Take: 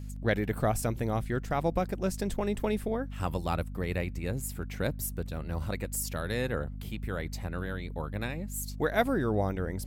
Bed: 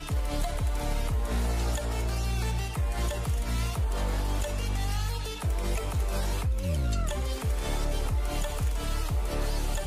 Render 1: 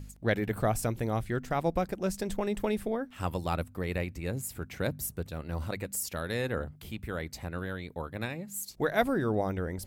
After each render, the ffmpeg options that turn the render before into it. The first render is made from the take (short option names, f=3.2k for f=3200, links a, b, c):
-af "bandreject=f=50:t=h:w=4,bandreject=f=100:t=h:w=4,bandreject=f=150:t=h:w=4,bandreject=f=200:t=h:w=4,bandreject=f=250:t=h:w=4"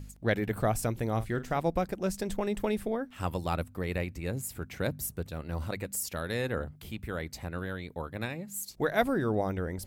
-filter_complex "[0:a]asettb=1/sr,asplit=3[a][b][c];[a]atrim=end=1.094[d];[b]atrim=start=1.09:end=1.58,asetpts=PTS-STARTPTS,afade=t=in:d=0.004:c=qsin,afade=t=out:st=0.486:d=0.004:c=qsin,asplit=2[e][f];[f]adelay=45,volume=-13dB[g];[e][g]amix=inputs=2:normalize=0,atrim=end_sample=21609[h];[c]atrim=start=1.576[i];[d][h]acrossfade=d=0.004:c1=hsin:c2=qsin[j];[j][i]acrossfade=d=0.004:c1=qsin:c2=hsin"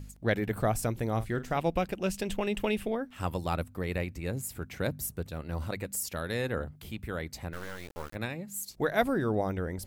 -filter_complex "[0:a]asettb=1/sr,asplit=3[a][b][c];[a]atrim=end=1.574[d];[b]atrim=start=1.57:end=2.95,asetpts=PTS-STARTPTS,afade=t=in:d=0.004:c=qsin,afade=t=out:st=1.376:d=0.004:c=qsin,equalizer=f=2.8k:t=o:w=0.51:g=12[e];[c]atrim=start=2.946[f];[d][e]acrossfade=d=0.004:c1=hsin:c2=qsin[g];[g][f]acrossfade=d=0.004:c1=qsin:c2=hsin,asplit=3[h][i][j];[h]afade=t=out:st=7.52:d=0.02[k];[i]acrusher=bits=5:dc=4:mix=0:aa=0.000001,afade=t=in:st=7.52:d=0.02,afade=t=out:st=8.14:d=0.02[l];[j]afade=t=in:st=8.14:d=0.02[m];[k][l][m]amix=inputs=3:normalize=0"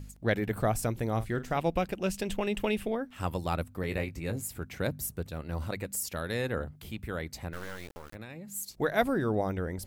-filter_complex "[0:a]asettb=1/sr,asplit=3[a][b][c];[a]atrim=end=3.814[d];[b]atrim=start=3.81:end=4.47,asetpts=PTS-STARTPTS,afade=t=in:d=0.004:c=qsin,afade=t=out:st=0.656:d=0.004:c=qsin,asplit=2[e][f];[f]adelay=19,volume=-7.5dB[g];[e][g]amix=inputs=2:normalize=0,atrim=end_sample=29106[h];[c]atrim=start=4.466[i];[d][h]acrossfade=d=0.004:c1=hsin:c2=qsin[j];[j][i]acrossfade=d=0.004:c1=qsin:c2=hsin,asettb=1/sr,asplit=3[k][l][m];[k]atrim=end=7.964[n];[l]atrim=start=7.96:end=8.55,asetpts=PTS-STARTPTS,afade=t=in:d=0.004:c=qsin,afade=t=out:st=0.586:d=0.004:c=qsin,acompressor=threshold=-38dB:ratio=12:attack=3.2:release=140:knee=1:detection=peak[o];[m]atrim=start=8.546[p];[n][o]acrossfade=d=0.004:c1=hsin:c2=qsin[q];[q][p]acrossfade=d=0.004:c1=qsin:c2=hsin"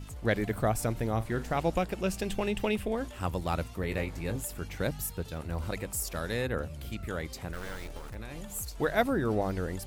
-filter_complex "[1:a]volume=-15dB[a];[0:a][a]amix=inputs=2:normalize=0"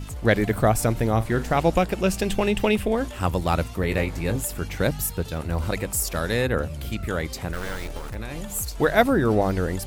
-af "volume=8.5dB"